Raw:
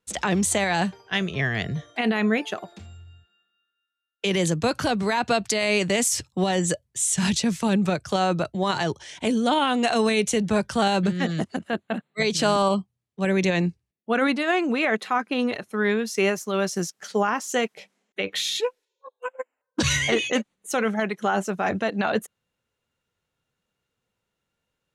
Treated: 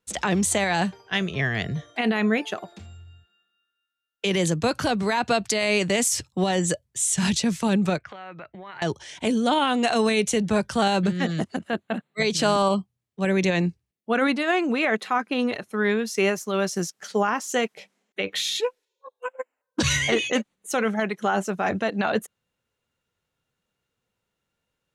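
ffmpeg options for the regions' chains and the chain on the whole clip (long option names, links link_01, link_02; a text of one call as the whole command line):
ffmpeg -i in.wav -filter_complex "[0:a]asettb=1/sr,asplit=3[link_01][link_02][link_03];[link_01]atrim=end=7.984[link_04];[link_02]atrim=start=7.98:end=8.82,asetpts=PTS-STARTPTS,afade=type=in:duration=0.004:curve=qsin,afade=type=out:start_time=0.836:duration=0.004:curve=qsin,lowshelf=frequency=390:gain=-9,acompressor=threshold=-38dB:ratio=8:attack=3.2:release=140:knee=1:detection=peak,lowpass=frequency=2100:width_type=q:width=3.5[link_05];[link_03]atrim=start=8.816[link_06];[link_04][link_05]acrossfade=duration=0.004:curve1=hsin:curve2=qsin[link_07];[link_07][link_06]acrossfade=duration=0.004:curve1=qsin:curve2=hsin" out.wav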